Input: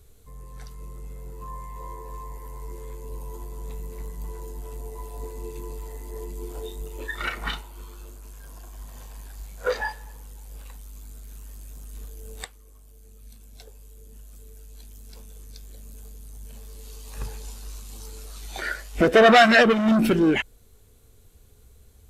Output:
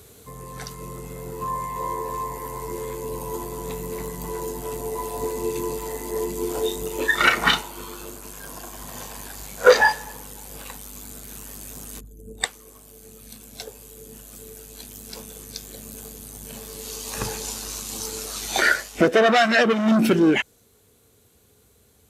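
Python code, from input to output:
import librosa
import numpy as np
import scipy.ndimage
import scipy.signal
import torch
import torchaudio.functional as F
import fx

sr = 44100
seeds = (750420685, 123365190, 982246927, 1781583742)

y = fx.envelope_sharpen(x, sr, power=2.0, at=(11.99, 12.43), fade=0.02)
y = scipy.signal.sosfilt(scipy.signal.butter(2, 140.0, 'highpass', fs=sr, output='sos'), y)
y = fx.dynamic_eq(y, sr, hz=6100.0, q=2.1, threshold_db=-55.0, ratio=4.0, max_db=4)
y = fx.rider(y, sr, range_db=10, speed_s=0.5)
y = F.gain(torch.from_numpy(y), 2.5).numpy()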